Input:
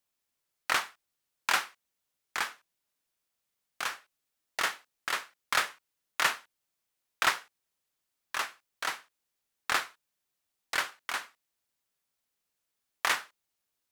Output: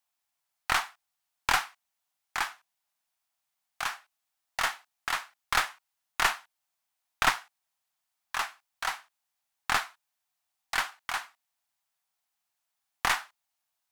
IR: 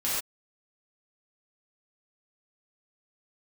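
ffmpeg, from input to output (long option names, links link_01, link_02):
-af "lowshelf=frequency=600:width_type=q:width=3:gain=-6.5,aeval=exprs='0.376*(cos(1*acos(clip(val(0)/0.376,-1,1)))-cos(1*PI/2))+0.119*(cos(2*acos(clip(val(0)/0.376,-1,1)))-cos(2*PI/2))':channel_layout=same"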